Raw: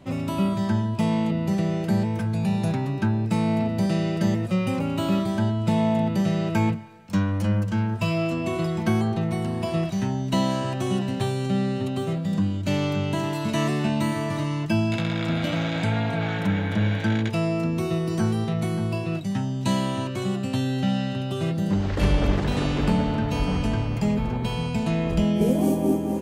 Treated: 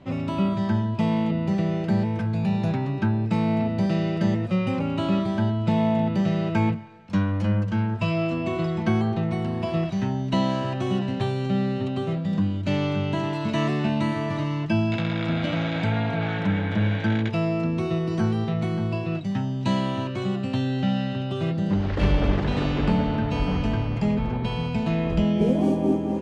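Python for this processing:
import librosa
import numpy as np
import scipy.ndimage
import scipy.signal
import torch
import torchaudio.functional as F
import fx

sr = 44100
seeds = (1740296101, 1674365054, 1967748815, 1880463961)

y = scipy.signal.sosfilt(scipy.signal.butter(2, 4200.0, 'lowpass', fs=sr, output='sos'), x)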